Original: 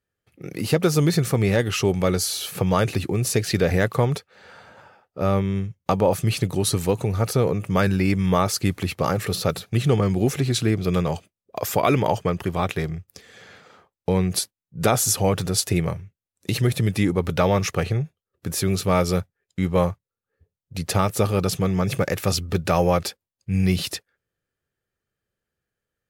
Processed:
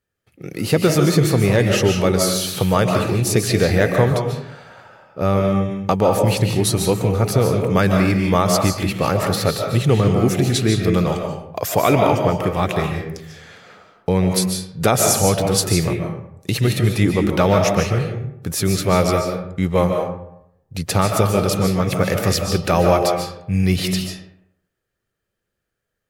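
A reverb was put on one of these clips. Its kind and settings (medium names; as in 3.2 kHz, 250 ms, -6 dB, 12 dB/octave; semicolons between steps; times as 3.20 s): algorithmic reverb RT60 0.76 s, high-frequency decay 0.55×, pre-delay 105 ms, DRR 2.5 dB; trim +3 dB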